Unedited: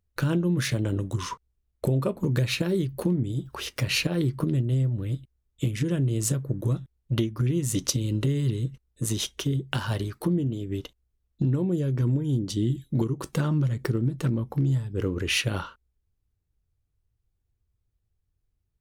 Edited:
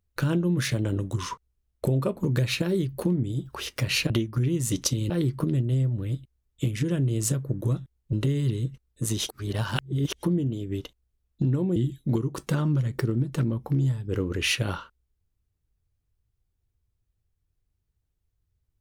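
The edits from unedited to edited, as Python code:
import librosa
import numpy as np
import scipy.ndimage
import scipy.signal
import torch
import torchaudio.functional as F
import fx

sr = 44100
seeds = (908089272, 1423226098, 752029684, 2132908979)

y = fx.edit(x, sr, fx.move(start_s=7.13, length_s=1.0, to_s=4.1),
    fx.reverse_span(start_s=9.29, length_s=0.94),
    fx.cut(start_s=11.76, length_s=0.86), tone=tone)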